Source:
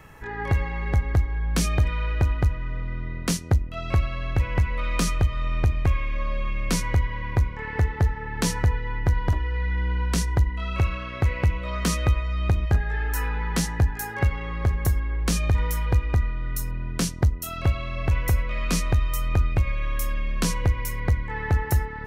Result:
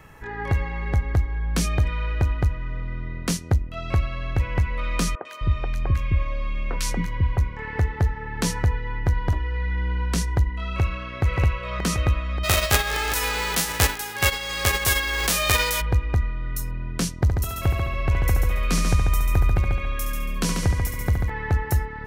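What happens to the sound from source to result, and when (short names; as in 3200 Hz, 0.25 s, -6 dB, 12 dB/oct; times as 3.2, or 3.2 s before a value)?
5.15–7.38 three bands offset in time mids, highs, lows 0.1/0.26 s, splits 350/1600 Hz
10.69–11.22 echo throw 0.58 s, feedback 60%, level -2 dB
12.43–15.8 spectral whitening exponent 0.3
17.19–21.3 multi-head echo 70 ms, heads first and second, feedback 40%, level -7 dB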